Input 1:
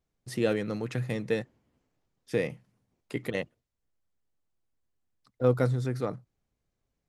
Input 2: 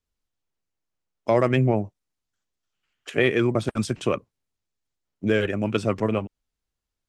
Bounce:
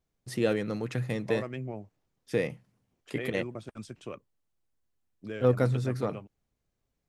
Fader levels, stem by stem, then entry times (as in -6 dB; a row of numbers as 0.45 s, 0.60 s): 0.0 dB, -17.0 dB; 0.00 s, 0.00 s